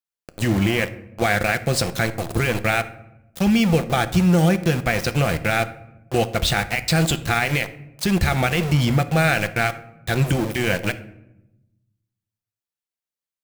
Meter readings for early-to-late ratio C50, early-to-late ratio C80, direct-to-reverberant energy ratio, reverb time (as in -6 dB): 15.0 dB, 18.0 dB, 11.0 dB, 0.90 s